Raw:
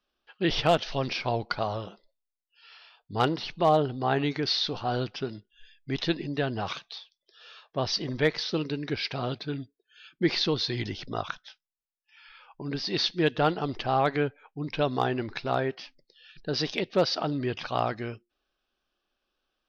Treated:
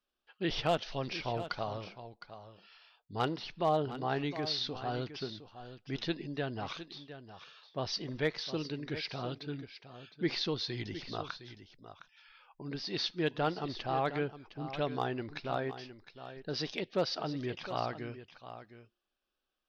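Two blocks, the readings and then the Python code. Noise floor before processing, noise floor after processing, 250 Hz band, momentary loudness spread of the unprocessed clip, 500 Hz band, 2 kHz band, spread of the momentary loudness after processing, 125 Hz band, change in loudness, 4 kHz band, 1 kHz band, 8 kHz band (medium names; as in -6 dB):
-85 dBFS, under -85 dBFS, -7.5 dB, 13 LU, -7.5 dB, -7.5 dB, 17 LU, -7.5 dB, -7.5 dB, -7.5 dB, -7.5 dB, no reading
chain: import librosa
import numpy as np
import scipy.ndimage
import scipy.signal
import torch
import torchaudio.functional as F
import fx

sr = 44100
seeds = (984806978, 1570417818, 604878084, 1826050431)

y = x + 10.0 ** (-12.5 / 20.0) * np.pad(x, (int(711 * sr / 1000.0), 0))[:len(x)]
y = F.gain(torch.from_numpy(y), -7.5).numpy()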